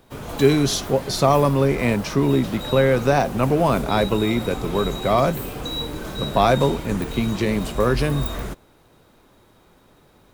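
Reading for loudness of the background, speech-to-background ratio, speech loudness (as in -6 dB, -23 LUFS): -30.5 LUFS, 10.0 dB, -20.5 LUFS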